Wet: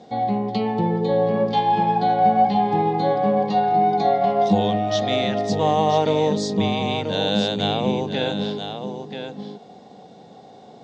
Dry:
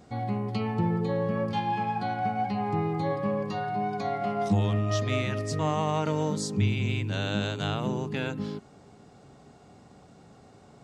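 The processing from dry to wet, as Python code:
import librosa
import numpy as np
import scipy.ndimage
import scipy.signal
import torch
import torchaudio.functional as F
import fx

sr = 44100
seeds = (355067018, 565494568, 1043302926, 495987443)

y = fx.cabinet(x, sr, low_hz=180.0, low_slope=12, high_hz=6300.0, hz=(200.0, 490.0, 760.0, 1300.0, 2500.0, 3600.0), db=(5, 8, 8, -9, -4, 9))
y = y + 10.0 ** (-8.0 / 20.0) * np.pad(y, (int(984 * sr / 1000.0), 0))[:len(y)]
y = y * librosa.db_to_amplitude(5.0)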